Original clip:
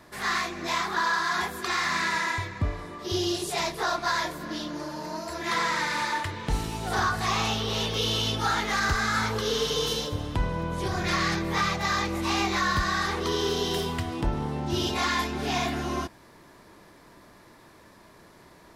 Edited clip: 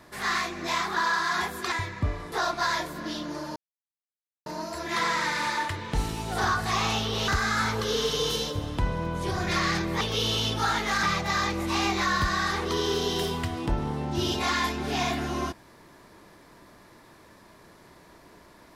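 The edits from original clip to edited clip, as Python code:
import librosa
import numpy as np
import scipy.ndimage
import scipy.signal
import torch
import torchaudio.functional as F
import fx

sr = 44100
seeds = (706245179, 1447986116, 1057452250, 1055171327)

y = fx.edit(x, sr, fx.cut(start_s=1.72, length_s=0.59),
    fx.cut(start_s=2.91, length_s=0.86),
    fx.insert_silence(at_s=5.01, length_s=0.9),
    fx.move(start_s=7.83, length_s=1.02, to_s=11.58), tone=tone)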